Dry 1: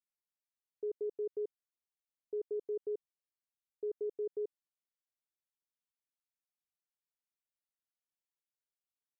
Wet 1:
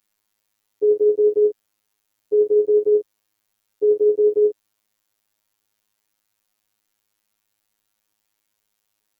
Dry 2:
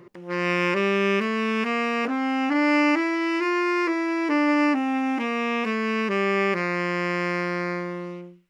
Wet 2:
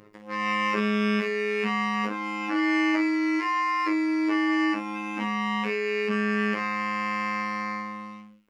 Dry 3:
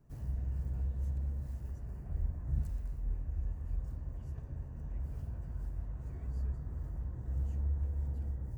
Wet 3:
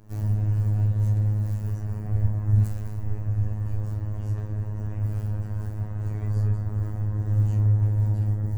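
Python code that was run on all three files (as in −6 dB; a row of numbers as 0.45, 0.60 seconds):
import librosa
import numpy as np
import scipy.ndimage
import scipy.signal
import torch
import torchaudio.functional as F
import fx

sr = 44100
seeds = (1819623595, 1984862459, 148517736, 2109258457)

y = fx.room_early_taps(x, sr, ms=(16, 30, 52), db=(-5.0, -10.0, -9.0))
y = fx.robotise(y, sr, hz=105.0)
y = librosa.util.normalize(y) * 10.0 ** (-9 / 20.0)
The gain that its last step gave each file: +21.0, −1.0, +15.0 decibels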